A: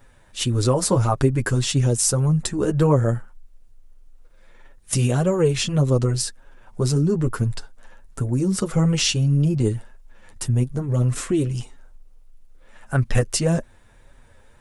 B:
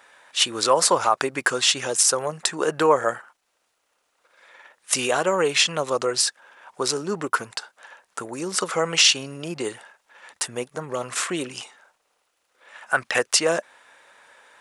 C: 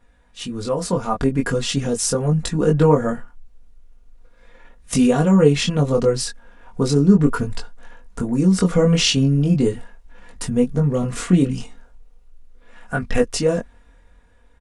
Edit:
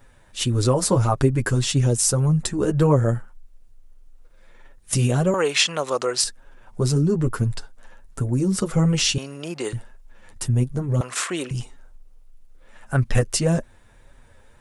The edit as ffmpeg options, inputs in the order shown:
-filter_complex "[1:a]asplit=3[a][b][c];[0:a]asplit=4[d][e][f][g];[d]atrim=end=5.342[h];[a]atrim=start=5.338:end=6.242[i];[e]atrim=start=6.238:end=9.182[j];[b]atrim=start=9.178:end=9.732[k];[f]atrim=start=9.728:end=11.012[l];[c]atrim=start=11.008:end=11.512[m];[g]atrim=start=11.508[n];[h][i]acrossfade=d=0.004:c1=hsin:c2=hsin[o];[o][j]acrossfade=d=0.004:c1=hsin:c2=hsin[p];[p][k]acrossfade=d=0.004:c1=hsin:c2=hsin[q];[q][l]acrossfade=d=0.004:c1=hsin:c2=hsin[r];[r][m]acrossfade=d=0.004:c1=hsin:c2=hsin[s];[s][n]acrossfade=d=0.004:c1=hsin:c2=hsin"

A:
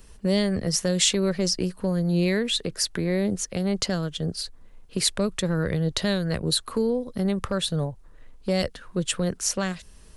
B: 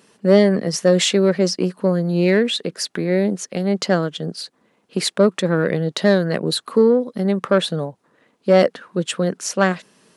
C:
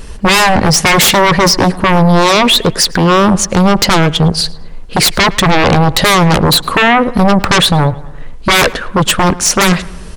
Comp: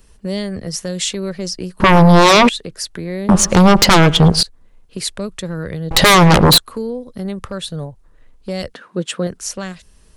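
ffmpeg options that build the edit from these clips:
-filter_complex "[2:a]asplit=3[a][b][c];[0:a]asplit=5[d][e][f][g][h];[d]atrim=end=1.802[i];[a]atrim=start=1.798:end=2.492[j];[e]atrim=start=2.488:end=3.292[k];[b]atrim=start=3.288:end=4.432[l];[f]atrim=start=4.428:end=5.912[m];[c]atrim=start=5.908:end=6.582[n];[g]atrim=start=6.578:end=8.742[o];[1:a]atrim=start=8.738:end=9.272[p];[h]atrim=start=9.268[q];[i][j]acrossfade=d=0.004:c1=hsin:c2=hsin[r];[r][k]acrossfade=d=0.004:c1=hsin:c2=hsin[s];[s][l]acrossfade=d=0.004:c1=hsin:c2=hsin[t];[t][m]acrossfade=d=0.004:c1=hsin:c2=hsin[u];[u][n]acrossfade=d=0.004:c1=hsin:c2=hsin[v];[v][o]acrossfade=d=0.004:c1=hsin:c2=hsin[w];[w][p]acrossfade=d=0.004:c1=hsin:c2=hsin[x];[x][q]acrossfade=d=0.004:c1=hsin:c2=hsin"

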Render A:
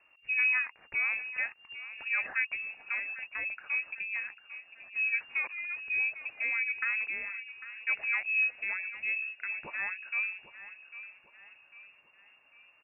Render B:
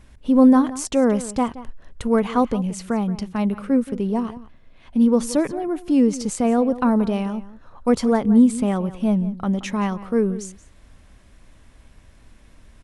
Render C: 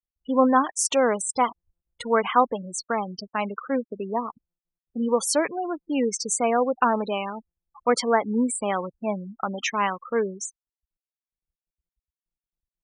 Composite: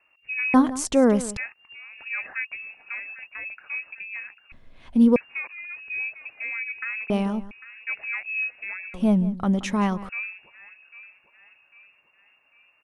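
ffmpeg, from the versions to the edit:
-filter_complex "[1:a]asplit=4[a][b][c][d];[0:a]asplit=5[e][f][g][h][i];[e]atrim=end=0.542[j];[a]atrim=start=0.538:end=1.372[k];[f]atrim=start=1.368:end=4.522[l];[b]atrim=start=4.518:end=5.162[m];[g]atrim=start=5.158:end=7.102[n];[c]atrim=start=7.098:end=7.512[o];[h]atrim=start=7.508:end=8.942[p];[d]atrim=start=8.938:end=10.092[q];[i]atrim=start=10.088[r];[j][k]acrossfade=d=0.004:c1=hsin:c2=hsin[s];[s][l]acrossfade=d=0.004:c1=hsin:c2=hsin[t];[t][m]acrossfade=d=0.004:c1=hsin:c2=hsin[u];[u][n]acrossfade=d=0.004:c1=hsin:c2=hsin[v];[v][o]acrossfade=d=0.004:c1=hsin:c2=hsin[w];[w][p]acrossfade=d=0.004:c1=hsin:c2=hsin[x];[x][q]acrossfade=d=0.004:c1=hsin:c2=hsin[y];[y][r]acrossfade=d=0.004:c1=hsin:c2=hsin"

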